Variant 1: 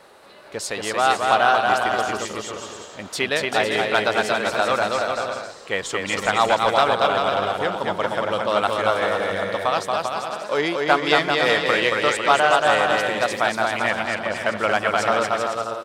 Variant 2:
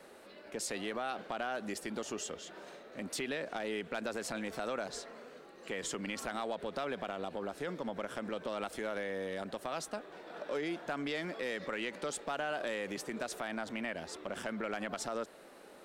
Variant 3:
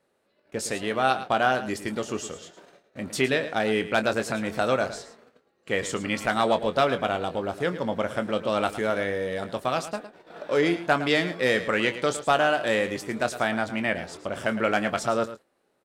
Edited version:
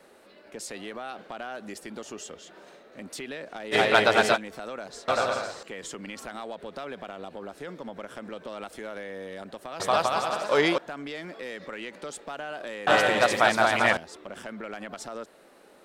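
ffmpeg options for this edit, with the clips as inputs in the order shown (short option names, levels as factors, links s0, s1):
-filter_complex "[0:a]asplit=4[s0][s1][s2][s3];[1:a]asplit=5[s4][s5][s6][s7][s8];[s4]atrim=end=3.75[s9];[s0]atrim=start=3.71:end=4.38[s10];[s5]atrim=start=4.34:end=5.082[s11];[s1]atrim=start=5.078:end=5.632[s12];[s6]atrim=start=5.628:end=9.802[s13];[s2]atrim=start=9.798:end=10.782[s14];[s7]atrim=start=10.778:end=12.872[s15];[s3]atrim=start=12.868:end=13.972[s16];[s8]atrim=start=13.968[s17];[s9][s10]acrossfade=d=0.04:c1=tri:c2=tri[s18];[s18][s11]acrossfade=d=0.04:c1=tri:c2=tri[s19];[s19][s12]acrossfade=d=0.004:c1=hsin:c2=hsin[s20];[s20][s13]acrossfade=d=0.004:c1=hsin:c2=hsin[s21];[s21][s14]acrossfade=d=0.004:c1=hsin:c2=hsin[s22];[s22][s15]acrossfade=d=0.004:c1=hsin:c2=hsin[s23];[s23][s16]acrossfade=d=0.004:c1=hsin:c2=hsin[s24];[s24][s17]acrossfade=d=0.004:c1=hsin:c2=hsin"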